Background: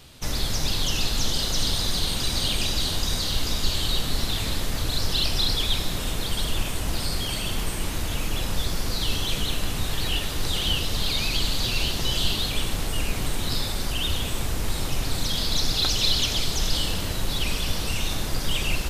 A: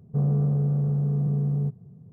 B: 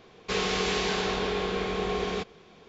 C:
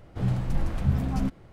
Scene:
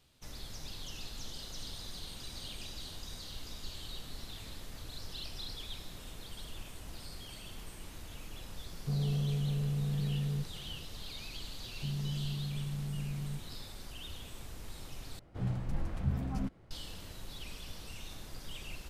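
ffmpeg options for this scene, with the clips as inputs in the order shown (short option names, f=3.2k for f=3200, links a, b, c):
-filter_complex "[1:a]asplit=2[a][b];[0:a]volume=-19.5dB[c];[a]asoftclip=type=tanh:threshold=-18dB[d];[b]asuperstop=centerf=790:order=20:qfactor=0.69[e];[c]asplit=2[f][g];[f]atrim=end=15.194[h];[3:a]atrim=end=1.52,asetpts=PTS-STARTPTS,volume=-8.5dB[i];[g]atrim=start=16.706[j];[d]atrim=end=2.12,asetpts=PTS-STARTPTS,volume=-8dB,afade=t=in:d=0.004:c=hsin,afade=t=out:st=2.116:d=0.004:c=hsin,adelay=8730[k];[e]atrim=end=2.12,asetpts=PTS-STARTPTS,volume=-14dB,afade=t=in:d=0.004:c=hsin,afade=t=out:st=2.116:d=0.004:c=hsin,adelay=11680[l];[h][i]acrossfade=d=0.004:c1=hsin:c2=hsin[m];[m][j]acrossfade=d=0.004:c1=hsin:c2=hsin[n];[n][k][l]amix=inputs=3:normalize=0"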